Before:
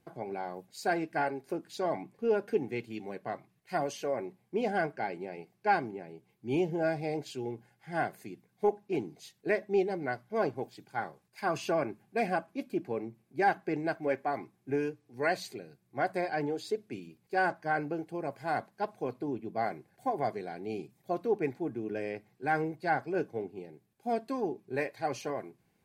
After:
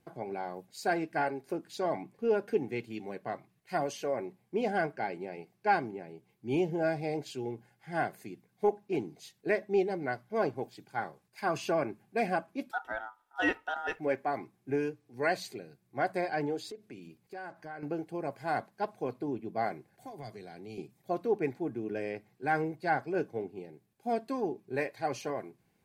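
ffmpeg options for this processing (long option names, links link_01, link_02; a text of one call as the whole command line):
ffmpeg -i in.wav -filter_complex "[0:a]asettb=1/sr,asplit=3[link_01][link_02][link_03];[link_01]atrim=end=12.714[link_04];[link_02]atrim=start=12.71:end=13.99,asetpts=PTS-STARTPTS,afade=type=in:duration=0.004:curve=qsin,afade=type=out:start_time=1.276:duration=0.004:curve=qsin,aeval=exprs='val(0)*sin(2*PI*1100*n/s)':channel_layout=same[link_05];[link_03]atrim=start=13.986[link_06];[link_04][link_05]acrossfade=duration=0.004:curve1=hsin:curve2=qsin[link_07];[link_07][link_06]acrossfade=duration=0.004:curve1=qsin:curve2=hsin,asettb=1/sr,asplit=3[link_08][link_09][link_10];[link_08]atrim=end=16.714[link_11];[link_09]atrim=start=16.71:end=17.83,asetpts=PTS-STARTPTS,afade=type=in:duration=0.004:curve=qsin,afade=type=out:start_time=1.116:duration=0.004:curve=qsin,acompressor=threshold=-44dB:ratio=3:attack=3.2:release=140:knee=1:detection=peak[link_12];[link_10]atrim=start=17.826[link_13];[link_11][link_12]acrossfade=duration=0.004:curve1=hsin:curve2=qsin[link_14];[link_14][link_13]acrossfade=duration=0.004:curve1=qsin:curve2=hsin,asettb=1/sr,asplit=3[link_15][link_16][link_17];[link_15]atrim=end=19.924[link_18];[link_16]atrim=start=19.92:end=20.78,asetpts=PTS-STARTPTS,afade=type=in:duration=0.004:curve=qsin,afade=type=out:start_time=0.856:duration=0.004:curve=qsin,acrossover=split=150|3000[link_19][link_20][link_21];[link_20]acompressor=threshold=-45dB:ratio=4:attack=3.2:release=140:knee=2.83:detection=peak[link_22];[link_19][link_22][link_21]amix=inputs=3:normalize=0[link_23];[link_17]atrim=start=20.776[link_24];[link_18][link_23]acrossfade=duration=0.004:curve1=hsin:curve2=qsin[link_25];[link_25][link_24]acrossfade=duration=0.004:curve1=qsin:curve2=hsin" out.wav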